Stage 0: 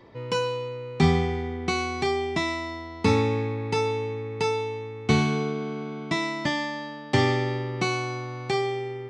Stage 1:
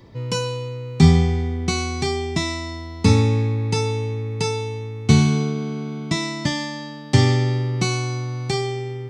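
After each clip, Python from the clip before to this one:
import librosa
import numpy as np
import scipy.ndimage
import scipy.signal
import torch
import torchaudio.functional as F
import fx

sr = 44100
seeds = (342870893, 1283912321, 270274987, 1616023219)

y = fx.bass_treble(x, sr, bass_db=12, treble_db=13)
y = y * librosa.db_to_amplitude(-1.0)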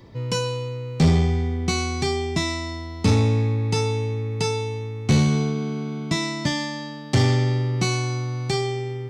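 y = 10.0 ** (-11.5 / 20.0) * np.tanh(x / 10.0 ** (-11.5 / 20.0))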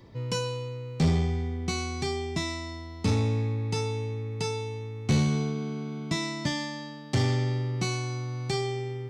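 y = fx.rider(x, sr, range_db=10, speed_s=2.0)
y = y * librosa.db_to_amplitude(-7.5)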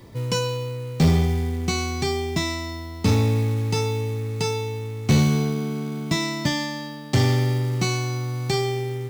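y = fx.quant_companded(x, sr, bits=6)
y = y * librosa.db_to_amplitude(6.0)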